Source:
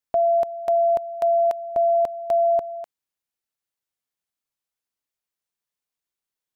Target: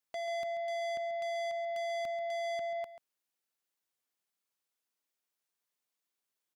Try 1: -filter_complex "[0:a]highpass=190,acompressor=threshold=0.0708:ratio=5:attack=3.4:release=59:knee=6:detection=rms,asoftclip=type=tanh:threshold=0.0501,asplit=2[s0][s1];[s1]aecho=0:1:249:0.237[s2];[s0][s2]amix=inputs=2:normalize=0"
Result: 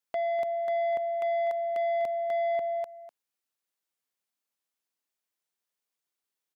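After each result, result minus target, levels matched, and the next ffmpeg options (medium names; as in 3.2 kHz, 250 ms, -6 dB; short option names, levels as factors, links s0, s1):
echo 112 ms late; saturation: distortion -8 dB
-filter_complex "[0:a]highpass=190,acompressor=threshold=0.0708:ratio=5:attack=3.4:release=59:knee=6:detection=rms,asoftclip=type=tanh:threshold=0.0501,asplit=2[s0][s1];[s1]aecho=0:1:137:0.237[s2];[s0][s2]amix=inputs=2:normalize=0"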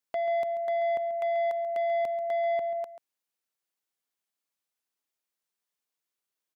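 saturation: distortion -8 dB
-filter_complex "[0:a]highpass=190,acompressor=threshold=0.0708:ratio=5:attack=3.4:release=59:knee=6:detection=rms,asoftclip=type=tanh:threshold=0.015,asplit=2[s0][s1];[s1]aecho=0:1:137:0.237[s2];[s0][s2]amix=inputs=2:normalize=0"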